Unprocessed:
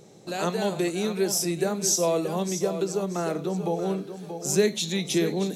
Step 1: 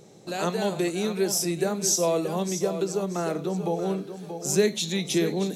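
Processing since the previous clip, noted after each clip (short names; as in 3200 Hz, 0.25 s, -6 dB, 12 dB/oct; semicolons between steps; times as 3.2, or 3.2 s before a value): nothing audible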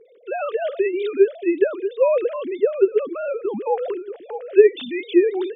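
sine-wave speech; gain +6 dB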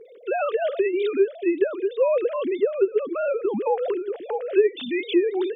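compressor 2:1, threshold -29 dBFS, peak gain reduction 12.5 dB; gain +5 dB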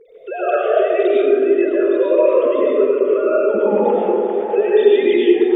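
digital reverb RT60 2.7 s, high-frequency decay 0.25×, pre-delay 65 ms, DRR -8.5 dB; gain -2 dB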